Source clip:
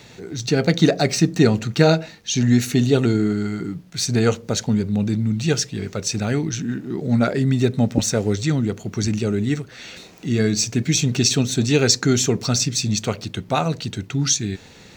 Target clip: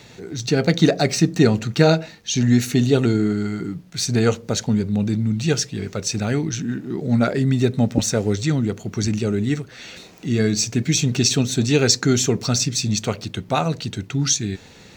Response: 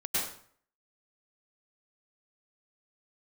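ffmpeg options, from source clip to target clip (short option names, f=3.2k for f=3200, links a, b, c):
-ar 48000 -c:a libvorbis -b:a 128k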